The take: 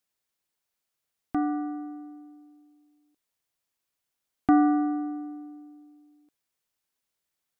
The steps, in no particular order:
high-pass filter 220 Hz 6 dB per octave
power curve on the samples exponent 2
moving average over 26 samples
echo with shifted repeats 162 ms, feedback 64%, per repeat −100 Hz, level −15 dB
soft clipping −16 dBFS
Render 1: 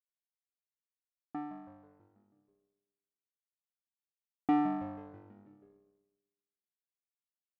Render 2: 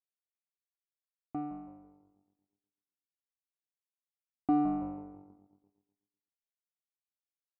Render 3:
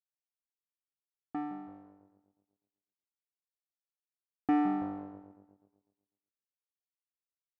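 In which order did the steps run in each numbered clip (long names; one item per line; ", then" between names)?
moving average, then power curve on the samples, then soft clipping, then echo with shifted repeats, then high-pass filter
echo with shifted repeats, then high-pass filter, then soft clipping, then power curve on the samples, then moving average
soft clipping, then moving average, then echo with shifted repeats, then power curve on the samples, then high-pass filter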